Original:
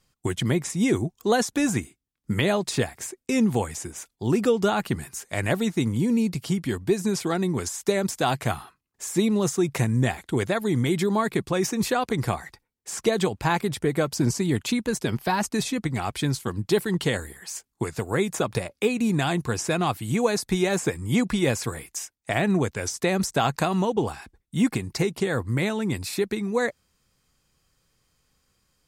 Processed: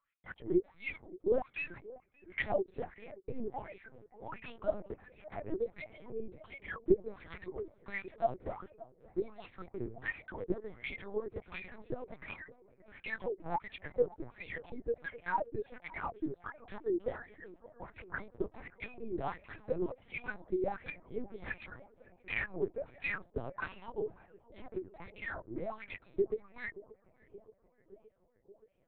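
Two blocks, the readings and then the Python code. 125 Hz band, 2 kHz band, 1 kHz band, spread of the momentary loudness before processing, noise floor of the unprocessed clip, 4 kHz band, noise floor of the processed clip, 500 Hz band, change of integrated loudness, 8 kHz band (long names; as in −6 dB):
−24.0 dB, −10.5 dB, −13.5 dB, 8 LU, −76 dBFS, −24.0 dB, −71 dBFS, −11.0 dB, −14.0 dB, below −40 dB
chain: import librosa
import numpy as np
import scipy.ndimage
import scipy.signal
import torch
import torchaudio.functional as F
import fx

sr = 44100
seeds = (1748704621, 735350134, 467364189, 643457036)

p1 = fx.wah_lfo(x, sr, hz=1.4, low_hz=340.0, high_hz=2500.0, q=7.7)
p2 = p1 + fx.echo_banded(p1, sr, ms=574, feedback_pct=79, hz=540.0, wet_db=-19.0, dry=0)
y = fx.lpc_vocoder(p2, sr, seeds[0], excitation='pitch_kept', order=8)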